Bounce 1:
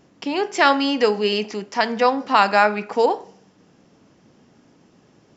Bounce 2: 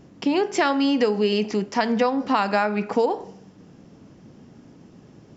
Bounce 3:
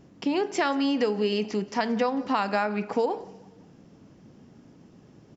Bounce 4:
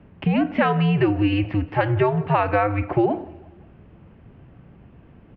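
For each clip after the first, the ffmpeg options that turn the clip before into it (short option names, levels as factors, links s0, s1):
-af "lowshelf=f=360:g=10.5,acompressor=threshold=0.141:ratio=6"
-af "aecho=1:1:178|356|534:0.0794|0.0365|0.0168,volume=0.596"
-af "highpass=f=160:t=q:w=0.5412,highpass=f=160:t=q:w=1.307,lowpass=f=3000:t=q:w=0.5176,lowpass=f=3000:t=q:w=0.7071,lowpass=f=3000:t=q:w=1.932,afreqshift=-110,volume=2"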